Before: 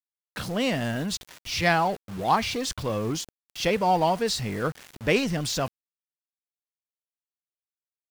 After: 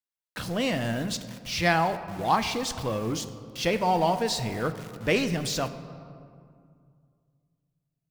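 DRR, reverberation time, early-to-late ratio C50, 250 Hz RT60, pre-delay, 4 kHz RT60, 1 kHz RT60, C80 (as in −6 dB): 9.5 dB, 2.2 s, 11.5 dB, 2.8 s, 3 ms, 1.2 s, 2.2 s, 12.5 dB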